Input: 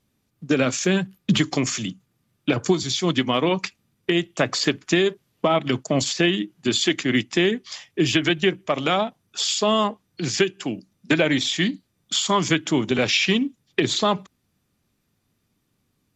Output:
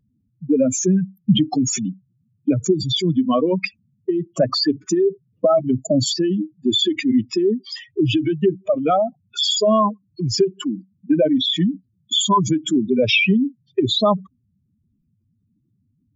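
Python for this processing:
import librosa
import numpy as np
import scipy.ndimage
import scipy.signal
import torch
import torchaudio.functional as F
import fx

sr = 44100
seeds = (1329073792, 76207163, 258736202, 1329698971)

y = fx.spec_expand(x, sr, power=3.4)
y = fx.dynamic_eq(y, sr, hz=340.0, q=6.7, threshold_db=-36.0, ratio=4.0, max_db=-5)
y = y * librosa.db_to_amplitude(5.0)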